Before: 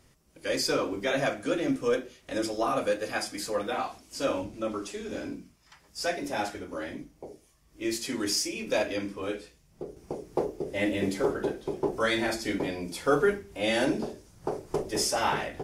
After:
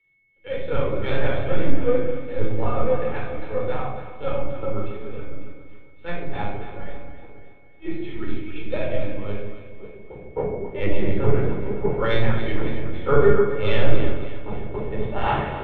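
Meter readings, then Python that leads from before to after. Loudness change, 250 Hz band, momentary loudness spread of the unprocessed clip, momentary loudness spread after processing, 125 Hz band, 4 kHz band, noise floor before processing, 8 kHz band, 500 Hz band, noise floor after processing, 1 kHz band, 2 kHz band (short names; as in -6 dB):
+4.5 dB, +2.0 dB, 12 LU, 16 LU, +15.0 dB, -5.0 dB, -62 dBFS, under -35 dB, +5.5 dB, -43 dBFS, +2.5 dB, +0.5 dB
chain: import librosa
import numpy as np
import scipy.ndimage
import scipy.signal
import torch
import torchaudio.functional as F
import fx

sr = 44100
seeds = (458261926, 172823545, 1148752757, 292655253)

p1 = fx.lpc_vocoder(x, sr, seeds[0], excitation='pitch_kept', order=10)
p2 = p1 + fx.echo_alternate(p1, sr, ms=139, hz=800.0, feedback_pct=78, wet_db=-5.5, dry=0)
p3 = p2 + 10.0 ** (-50.0 / 20.0) * np.sin(2.0 * np.pi * 2200.0 * np.arange(len(p2)) / sr)
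p4 = np.clip(10.0 ** (17.5 / 20.0) * p3, -1.0, 1.0) / 10.0 ** (17.5 / 20.0)
p5 = p3 + F.gain(torch.from_numpy(p4), -9.0).numpy()
p6 = fx.air_absorb(p5, sr, metres=190.0)
p7 = fx.room_shoebox(p6, sr, seeds[1], volume_m3=2000.0, walls='furnished', distance_m=4.3)
p8 = fx.band_widen(p7, sr, depth_pct=70)
y = F.gain(torch.from_numpy(p8), -4.0).numpy()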